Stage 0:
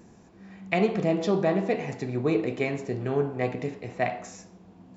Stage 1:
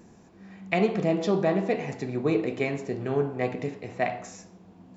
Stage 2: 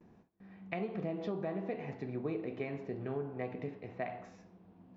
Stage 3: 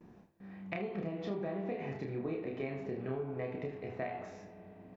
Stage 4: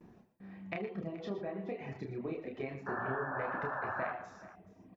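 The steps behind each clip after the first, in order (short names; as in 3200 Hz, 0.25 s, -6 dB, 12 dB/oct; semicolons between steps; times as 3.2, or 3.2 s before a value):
notches 60/120 Hz
gate with hold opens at -44 dBFS; compressor, threshold -25 dBFS, peak gain reduction 8 dB; air absorption 250 m; gain -7.5 dB
compressor 3:1, threshold -39 dBFS, peak gain reduction 6 dB; early reflections 30 ms -3.5 dB, 78 ms -13 dB; on a send at -13 dB: reverb RT60 4.6 s, pre-delay 33 ms; on the sum: gain +2.5 dB
reverb removal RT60 1.4 s; painted sound noise, 2.86–4.13, 520–1800 Hz -39 dBFS; on a send: tapped delay 77/114/122/426 ms -19.5/-15/-15/-17.5 dB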